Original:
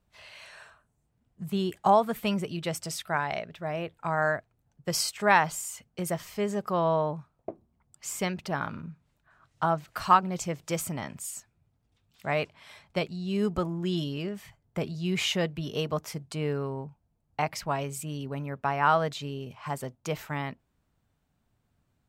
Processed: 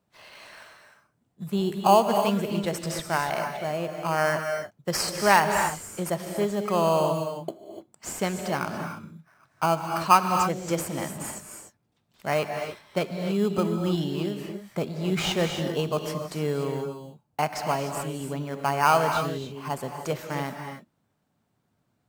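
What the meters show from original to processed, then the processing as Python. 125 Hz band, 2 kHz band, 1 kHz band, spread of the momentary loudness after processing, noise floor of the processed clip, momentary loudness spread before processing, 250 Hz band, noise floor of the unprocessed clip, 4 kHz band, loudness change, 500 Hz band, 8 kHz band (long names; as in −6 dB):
+2.5 dB, +2.0 dB, +3.5 dB, 16 LU, −73 dBFS, 16 LU, +3.5 dB, −74 dBFS, +2.5 dB, +3.5 dB, +4.5 dB, +2.5 dB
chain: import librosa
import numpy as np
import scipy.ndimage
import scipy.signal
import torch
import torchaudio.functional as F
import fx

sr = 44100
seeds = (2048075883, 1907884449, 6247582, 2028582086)

p1 = scipy.signal.sosfilt(scipy.signal.butter(2, 150.0, 'highpass', fs=sr, output='sos'), x)
p2 = fx.sample_hold(p1, sr, seeds[0], rate_hz=3700.0, jitter_pct=0)
p3 = p1 + (p2 * 10.0 ** (-6.0 / 20.0))
y = fx.rev_gated(p3, sr, seeds[1], gate_ms=320, shape='rising', drr_db=5.0)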